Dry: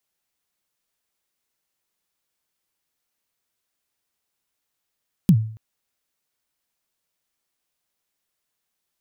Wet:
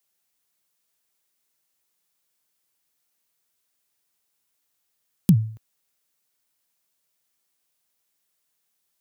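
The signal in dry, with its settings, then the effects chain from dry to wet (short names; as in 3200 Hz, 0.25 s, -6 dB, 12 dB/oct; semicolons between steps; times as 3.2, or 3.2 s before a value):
kick drum length 0.28 s, from 210 Hz, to 110 Hz, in 69 ms, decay 0.51 s, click on, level -7 dB
HPF 69 Hz; high shelf 5400 Hz +6.5 dB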